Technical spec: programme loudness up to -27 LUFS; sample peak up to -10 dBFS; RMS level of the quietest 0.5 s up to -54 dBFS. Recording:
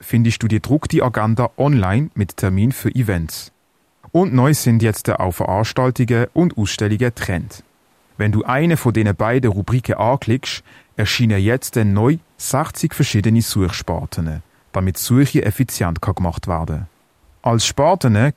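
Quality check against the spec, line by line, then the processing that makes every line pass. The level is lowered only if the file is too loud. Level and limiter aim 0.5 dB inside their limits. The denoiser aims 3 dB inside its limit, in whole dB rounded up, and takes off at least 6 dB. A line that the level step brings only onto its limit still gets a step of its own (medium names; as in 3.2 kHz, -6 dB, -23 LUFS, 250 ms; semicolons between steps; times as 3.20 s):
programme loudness -17.5 LUFS: fail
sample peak -5.0 dBFS: fail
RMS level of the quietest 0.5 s -61 dBFS: pass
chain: trim -10 dB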